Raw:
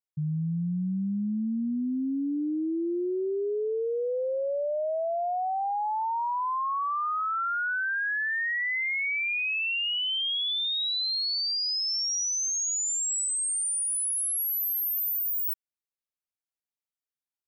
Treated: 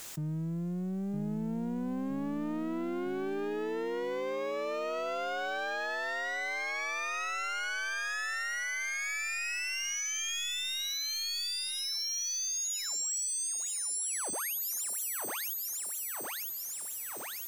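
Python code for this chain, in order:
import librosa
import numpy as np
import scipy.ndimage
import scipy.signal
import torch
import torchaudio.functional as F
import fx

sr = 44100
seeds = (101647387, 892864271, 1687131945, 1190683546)

y = fx.lower_of_two(x, sr, delay_ms=0.51)
y = scipy.signal.sosfilt(scipy.signal.butter(2, 310.0, 'highpass', fs=sr, output='sos'), y)
y = fx.air_absorb(y, sr, metres=89.0)
y = 10.0 ** (-36.0 / 20.0) * np.tanh(y / 10.0 ** (-36.0 / 20.0))
y = fx.rider(y, sr, range_db=10, speed_s=0.5)
y = fx.quant_dither(y, sr, seeds[0], bits=12, dither='triangular')
y = fx.peak_eq(y, sr, hz=7100.0, db=6.5, octaves=0.51)
y = fx.echo_feedback(y, sr, ms=961, feedback_pct=42, wet_db=-6)
y = fx.env_flatten(y, sr, amount_pct=70)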